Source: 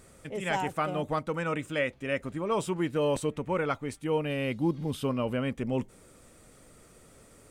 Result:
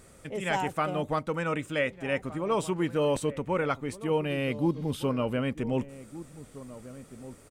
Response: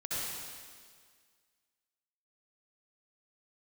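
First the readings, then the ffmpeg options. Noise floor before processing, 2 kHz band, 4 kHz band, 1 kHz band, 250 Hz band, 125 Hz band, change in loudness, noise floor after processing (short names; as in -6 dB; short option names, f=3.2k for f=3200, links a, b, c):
-56 dBFS, +1.0 dB, +1.0 dB, +1.0 dB, +1.0 dB, +1.0 dB, +1.0 dB, -54 dBFS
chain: -filter_complex "[0:a]asplit=2[a][b];[b]adelay=1516,volume=-15dB,highshelf=f=4k:g=-34.1[c];[a][c]amix=inputs=2:normalize=0,volume=1dB"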